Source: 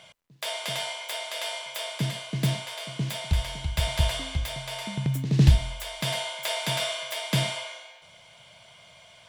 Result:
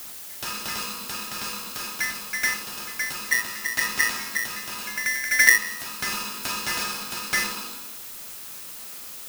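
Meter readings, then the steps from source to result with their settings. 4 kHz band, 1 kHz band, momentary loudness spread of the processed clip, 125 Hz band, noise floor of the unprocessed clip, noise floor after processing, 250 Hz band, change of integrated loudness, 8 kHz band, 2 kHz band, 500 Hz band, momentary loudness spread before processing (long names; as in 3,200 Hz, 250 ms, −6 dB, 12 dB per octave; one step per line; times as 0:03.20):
−0.5 dB, +2.0 dB, 14 LU, −24.0 dB, −53 dBFS, −39 dBFS, −9.0 dB, +3.5 dB, +9.0 dB, +12.5 dB, −8.5 dB, 8 LU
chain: background noise blue −39 dBFS
ring modulator with a square carrier 1,900 Hz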